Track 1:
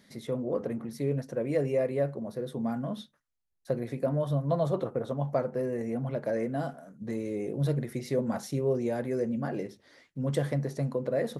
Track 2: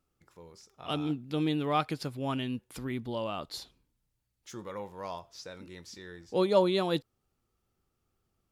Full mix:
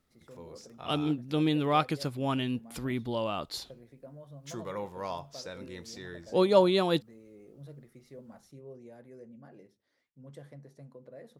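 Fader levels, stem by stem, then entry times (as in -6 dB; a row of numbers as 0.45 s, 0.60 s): -20.0 dB, +2.5 dB; 0.00 s, 0.00 s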